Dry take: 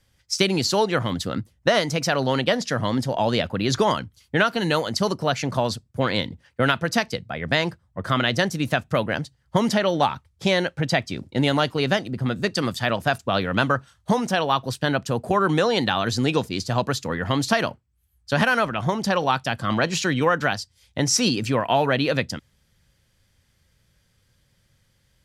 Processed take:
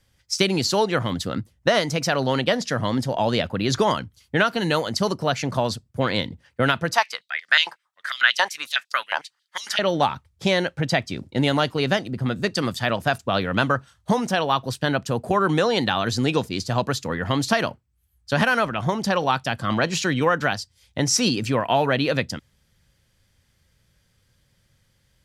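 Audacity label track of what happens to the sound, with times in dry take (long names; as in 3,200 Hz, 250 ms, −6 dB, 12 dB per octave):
6.940000	9.790000	high-pass on a step sequencer 11 Hz 920–4,700 Hz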